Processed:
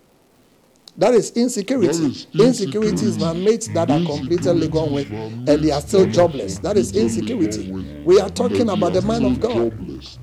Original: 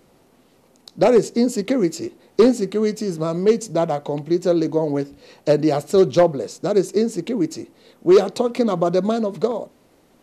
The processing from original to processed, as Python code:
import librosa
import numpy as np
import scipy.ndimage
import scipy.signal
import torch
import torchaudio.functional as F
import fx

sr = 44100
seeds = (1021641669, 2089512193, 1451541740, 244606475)

y = fx.dmg_crackle(x, sr, seeds[0], per_s=160.0, level_db=-46.0)
y = fx.dynamic_eq(y, sr, hz=7500.0, q=0.75, threshold_db=-45.0, ratio=4.0, max_db=6)
y = fx.echo_pitch(y, sr, ms=303, semitones=-7, count=3, db_per_echo=-6.0)